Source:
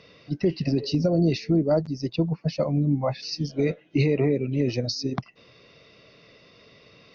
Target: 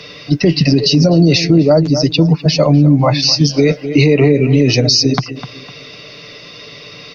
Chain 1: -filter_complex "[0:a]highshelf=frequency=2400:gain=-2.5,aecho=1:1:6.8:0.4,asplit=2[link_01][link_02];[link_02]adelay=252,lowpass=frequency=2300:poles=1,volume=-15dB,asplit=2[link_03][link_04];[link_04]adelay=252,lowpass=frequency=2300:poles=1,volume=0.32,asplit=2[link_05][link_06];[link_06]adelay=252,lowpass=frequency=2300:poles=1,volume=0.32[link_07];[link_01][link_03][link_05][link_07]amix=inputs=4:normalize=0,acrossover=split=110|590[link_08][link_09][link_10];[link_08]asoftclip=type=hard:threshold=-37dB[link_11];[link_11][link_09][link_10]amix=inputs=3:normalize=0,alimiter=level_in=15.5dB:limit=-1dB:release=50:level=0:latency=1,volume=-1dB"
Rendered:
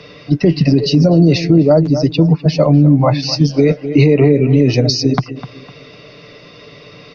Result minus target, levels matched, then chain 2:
4,000 Hz band −6.5 dB
-filter_complex "[0:a]highshelf=frequency=2400:gain=9.5,aecho=1:1:6.8:0.4,asplit=2[link_01][link_02];[link_02]adelay=252,lowpass=frequency=2300:poles=1,volume=-15dB,asplit=2[link_03][link_04];[link_04]adelay=252,lowpass=frequency=2300:poles=1,volume=0.32,asplit=2[link_05][link_06];[link_06]adelay=252,lowpass=frequency=2300:poles=1,volume=0.32[link_07];[link_01][link_03][link_05][link_07]amix=inputs=4:normalize=0,acrossover=split=110|590[link_08][link_09][link_10];[link_08]asoftclip=type=hard:threshold=-37dB[link_11];[link_11][link_09][link_10]amix=inputs=3:normalize=0,alimiter=level_in=15.5dB:limit=-1dB:release=50:level=0:latency=1,volume=-1dB"

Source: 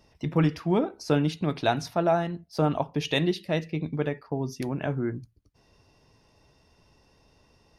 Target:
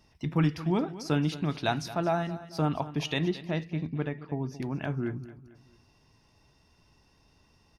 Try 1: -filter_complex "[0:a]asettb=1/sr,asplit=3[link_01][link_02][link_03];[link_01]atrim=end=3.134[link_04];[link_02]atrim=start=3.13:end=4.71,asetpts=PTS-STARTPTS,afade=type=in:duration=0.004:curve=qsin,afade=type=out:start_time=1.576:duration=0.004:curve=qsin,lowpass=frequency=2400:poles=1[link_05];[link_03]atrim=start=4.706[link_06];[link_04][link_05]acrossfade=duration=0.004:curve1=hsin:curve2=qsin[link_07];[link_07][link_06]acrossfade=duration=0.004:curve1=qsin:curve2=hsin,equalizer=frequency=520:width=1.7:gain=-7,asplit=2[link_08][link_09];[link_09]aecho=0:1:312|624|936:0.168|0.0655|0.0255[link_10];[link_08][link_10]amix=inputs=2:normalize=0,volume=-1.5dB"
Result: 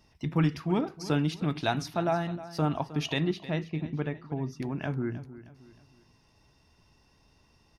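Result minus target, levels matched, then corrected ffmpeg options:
echo 89 ms late
-filter_complex "[0:a]asettb=1/sr,asplit=3[link_01][link_02][link_03];[link_01]atrim=end=3.134[link_04];[link_02]atrim=start=3.13:end=4.71,asetpts=PTS-STARTPTS,afade=type=in:duration=0.004:curve=qsin,afade=type=out:start_time=1.576:duration=0.004:curve=qsin,lowpass=frequency=2400:poles=1[link_05];[link_03]atrim=start=4.706[link_06];[link_04][link_05]acrossfade=duration=0.004:curve1=hsin:curve2=qsin[link_07];[link_07][link_06]acrossfade=duration=0.004:curve1=qsin:curve2=hsin,equalizer=frequency=520:width=1.7:gain=-7,asplit=2[link_08][link_09];[link_09]aecho=0:1:223|446|669:0.168|0.0655|0.0255[link_10];[link_08][link_10]amix=inputs=2:normalize=0,volume=-1.5dB"

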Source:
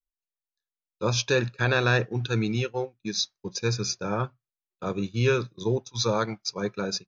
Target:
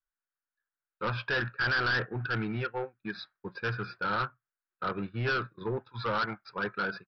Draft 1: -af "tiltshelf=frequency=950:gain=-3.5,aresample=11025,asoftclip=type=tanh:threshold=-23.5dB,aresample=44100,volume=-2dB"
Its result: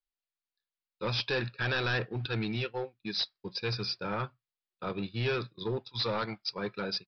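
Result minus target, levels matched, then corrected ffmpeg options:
2,000 Hz band −4.5 dB
-af "lowpass=frequency=1500:width_type=q:width=4.5,tiltshelf=frequency=950:gain=-3.5,aresample=11025,asoftclip=type=tanh:threshold=-23.5dB,aresample=44100,volume=-2dB"

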